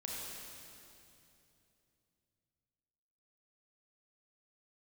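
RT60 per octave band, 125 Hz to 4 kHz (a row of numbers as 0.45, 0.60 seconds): 4.1, 3.5, 3.1, 2.6, 2.6, 2.6 seconds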